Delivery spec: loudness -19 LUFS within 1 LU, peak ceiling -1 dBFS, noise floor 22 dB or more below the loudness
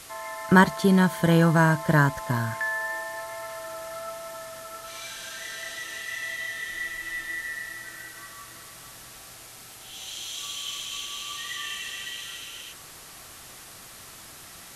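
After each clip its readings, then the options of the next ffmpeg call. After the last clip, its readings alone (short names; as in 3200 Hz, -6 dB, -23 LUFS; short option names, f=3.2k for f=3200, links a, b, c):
noise floor -46 dBFS; noise floor target -49 dBFS; loudness -26.5 LUFS; peak -4.0 dBFS; loudness target -19.0 LUFS
-> -af "afftdn=nr=6:nf=-46"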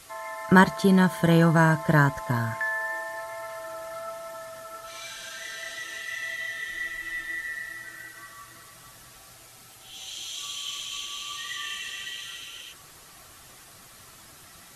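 noise floor -50 dBFS; loudness -26.5 LUFS; peak -4.5 dBFS; loudness target -19.0 LUFS
-> -af "volume=7.5dB,alimiter=limit=-1dB:level=0:latency=1"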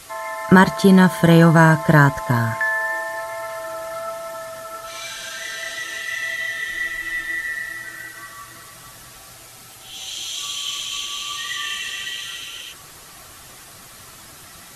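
loudness -19.5 LUFS; peak -1.0 dBFS; noise floor -43 dBFS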